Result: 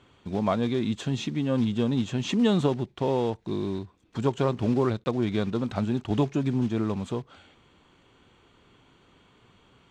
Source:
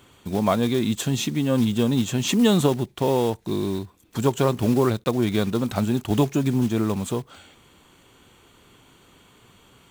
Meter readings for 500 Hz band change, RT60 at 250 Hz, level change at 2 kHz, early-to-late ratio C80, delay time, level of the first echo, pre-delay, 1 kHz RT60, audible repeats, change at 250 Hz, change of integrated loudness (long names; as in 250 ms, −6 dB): −4.5 dB, no reverb audible, −5.5 dB, no reverb audible, no echo audible, no echo audible, no reverb audible, no reverb audible, no echo audible, −4.0 dB, −4.5 dB